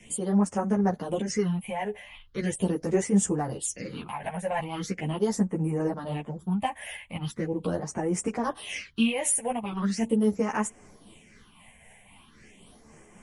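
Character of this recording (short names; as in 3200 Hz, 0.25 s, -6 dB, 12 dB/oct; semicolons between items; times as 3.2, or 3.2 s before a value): phasing stages 6, 0.4 Hz, lowest notch 320–3900 Hz; tremolo triangle 3.8 Hz, depth 40%; a shimmering, thickened sound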